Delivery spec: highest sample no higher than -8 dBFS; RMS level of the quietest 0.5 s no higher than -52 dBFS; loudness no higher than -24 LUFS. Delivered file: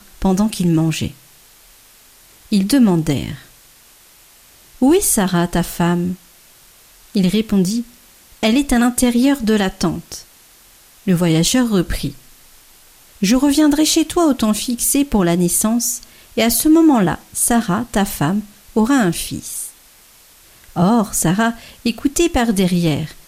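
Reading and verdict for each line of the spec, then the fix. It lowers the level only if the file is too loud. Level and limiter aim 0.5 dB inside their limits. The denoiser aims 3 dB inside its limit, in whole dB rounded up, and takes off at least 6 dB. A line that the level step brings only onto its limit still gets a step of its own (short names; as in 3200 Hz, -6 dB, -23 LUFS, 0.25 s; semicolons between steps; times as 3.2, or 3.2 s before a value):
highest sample -4.5 dBFS: fail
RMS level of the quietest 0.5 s -47 dBFS: fail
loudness -16.5 LUFS: fail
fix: gain -8 dB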